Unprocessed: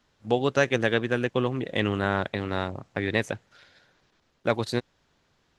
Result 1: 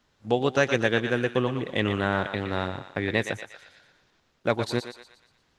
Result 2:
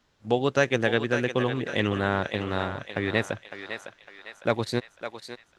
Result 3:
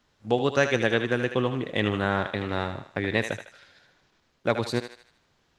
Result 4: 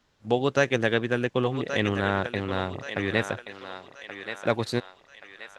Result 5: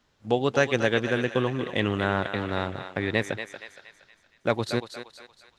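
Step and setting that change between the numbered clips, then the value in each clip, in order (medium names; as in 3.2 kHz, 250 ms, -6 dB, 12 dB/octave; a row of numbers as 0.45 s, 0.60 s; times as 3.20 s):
thinning echo, time: 118 ms, 556 ms, 77 ms, 1128 ms, 234 ms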